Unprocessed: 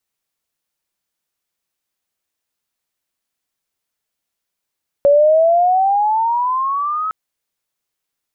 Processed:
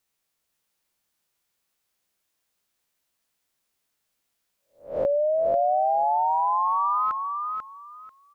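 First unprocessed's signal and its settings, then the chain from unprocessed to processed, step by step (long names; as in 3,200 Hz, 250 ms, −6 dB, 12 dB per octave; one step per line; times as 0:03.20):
pitch glide with a swell sine, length 2.06 s, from 561 Hz, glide +14.5 semitones, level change −11 dB, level −7 dB
peak hold with a rise ahead of every peak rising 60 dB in 0.35 s
downward compressor 4 to 1, threshold −24 dBFS
on a send: repeating echo 491 ms, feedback 20%, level −5 dB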